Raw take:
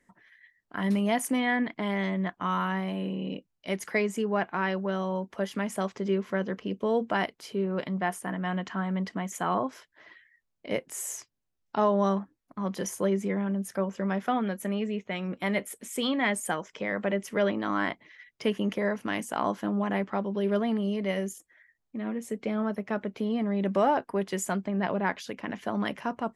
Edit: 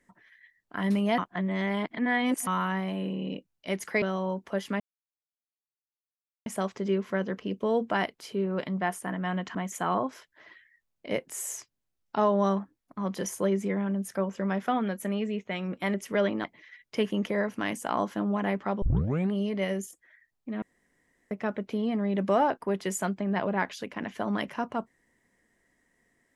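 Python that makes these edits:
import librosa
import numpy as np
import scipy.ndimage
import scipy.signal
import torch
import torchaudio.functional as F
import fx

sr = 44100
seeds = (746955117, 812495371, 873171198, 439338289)

y = fx.edit(x, sr, fx.reverse_span(start_s=1.18, length_s=1.29),
    fx.cut(start_s=4.02, length_s=0.86),
    fx.insert_silence(at_s=5.66, length_s=1.66),
    fx.cut(start_s=8.75, length_s=0.4),
    fx.cut(start_s=15.54, length_s=1.62),
    fx.cut(start_s=17.66, length_s=0.25),
    fx.tape_start(start_s=20.29, length_s=0.5),
    fx.room_tone_fill(start_s=22.09, length_s=0.69), tone=tone)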